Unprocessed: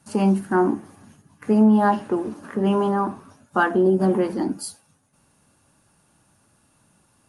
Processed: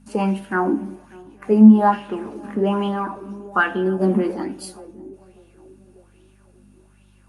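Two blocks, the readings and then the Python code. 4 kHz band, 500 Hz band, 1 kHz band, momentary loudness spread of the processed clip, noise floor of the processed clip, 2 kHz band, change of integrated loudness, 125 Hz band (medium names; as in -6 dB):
+2.0 dB, -0.5 dB, +1.0 dB, 22 LU, -54 dBFS, +3.5 dB, +2.0 dB, +1.0 dB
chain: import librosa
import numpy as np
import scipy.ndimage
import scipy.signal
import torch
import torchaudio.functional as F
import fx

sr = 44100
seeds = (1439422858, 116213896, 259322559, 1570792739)

p1 = fx.peak_eq(x, sr, hz=2500.0, db=6.0, octaves=0.69)
p2 = fx.add_hum(p1, sr, base_hz=50, snr_db=27)
p3 = fx.quant_float(p2, sr, bits=8)
p4 = p3 + fx.echo_banded(p3, sr, ms=595, feedback_pct=47, hz=430.0, wet_db=-18, dry=0)
p5 = fx.rev_fdn(p4, sr, rt60_s=1.0, lf_ratio=0.7, hf_ratio=0.4, size_ms=30.0, drr_db=9.5)
p6 = fx.bell_lfo(p5, sr, hz=1.2, low_hz=220.0, high_hz=3400.0, db=12)
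y = p6 * 10.0 ** (-5.0 / 20.0)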